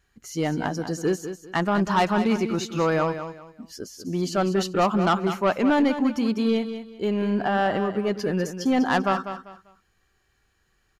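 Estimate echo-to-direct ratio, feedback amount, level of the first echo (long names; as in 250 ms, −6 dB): −9.5 dB, 27%, −10.0 dB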